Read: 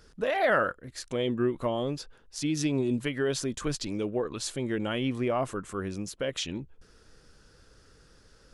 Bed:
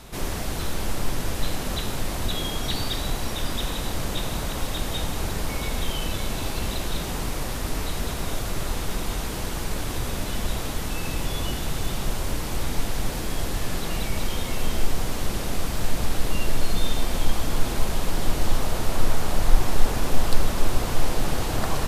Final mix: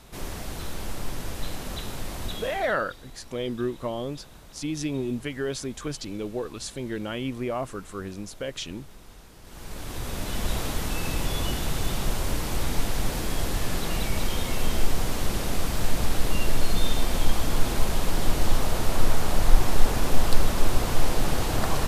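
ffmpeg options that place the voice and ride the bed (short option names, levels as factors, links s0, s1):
-filter_complex "[0:a]adelay=2200,volume=0.841[s0];[1:a]volume=5.31,afade=t=out:st=2.29:d=0.46:silence=0.188365,afade=t=in:st=9.42:d=1.14:silence=0.0944061[s1];[s0][s1]amix=inputs=2:normalize=0"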